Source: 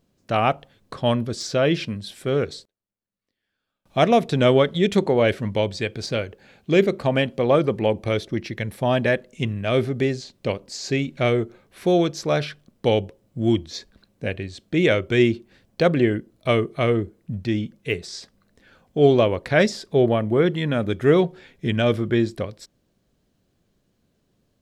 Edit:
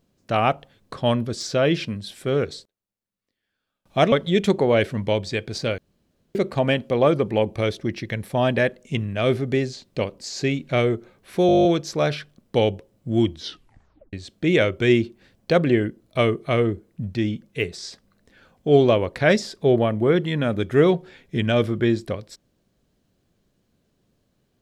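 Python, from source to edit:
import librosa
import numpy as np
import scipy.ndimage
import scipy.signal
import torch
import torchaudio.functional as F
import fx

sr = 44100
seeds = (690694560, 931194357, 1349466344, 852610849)

y = fx.edit(x, sr, fx.cut(start_s=4.12, length_s=0.48),
    fx.room_tone_fill(start_s=6.26, length_s=0.57),
    fx.stutter(start_s=11.95, slice_s=0.02, count=10),
    fx.tape_stop(start_s=13.66, length_s=0.77), tone=tone)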